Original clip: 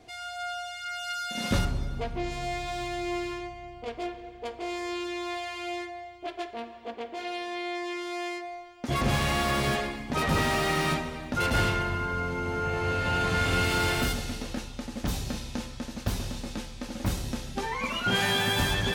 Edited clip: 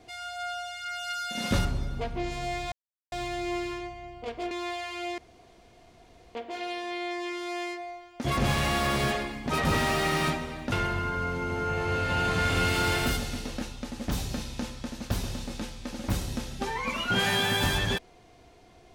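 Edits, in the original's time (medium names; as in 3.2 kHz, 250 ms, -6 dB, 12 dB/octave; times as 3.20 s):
2.72 s: insert silence 0.40 s
4.11–5.15 s: delete
5.82–6.99 s: room tone
11.36–11.68 s: delete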